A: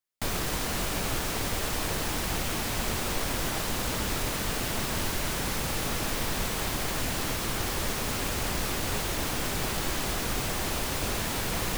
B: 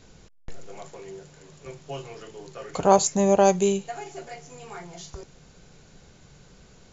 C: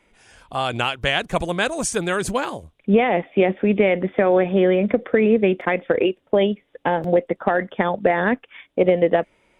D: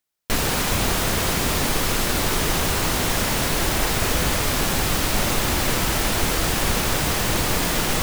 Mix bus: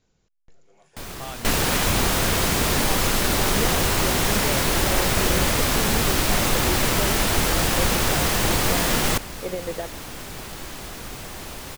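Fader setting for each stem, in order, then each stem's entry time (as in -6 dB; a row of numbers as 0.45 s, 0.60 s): -5.5 dB, -17.0 dB, -14.0 dB, +0.5 dB; 0.75 s, 0.00 s, 0.65 s, 1.15 s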